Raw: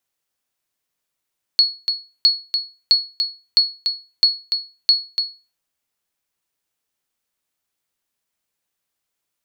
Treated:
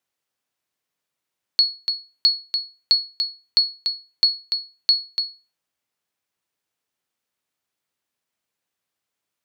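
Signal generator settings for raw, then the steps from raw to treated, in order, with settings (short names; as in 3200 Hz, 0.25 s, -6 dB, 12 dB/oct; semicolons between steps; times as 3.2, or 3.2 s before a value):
sonar ping 4360 Hz, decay 0.31 s, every 0.66 s, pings 6, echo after 0.29 s, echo -7 dB -5.5 dBFS
HPF 82 Hz; high shelf 6000 Hz -6.5 dB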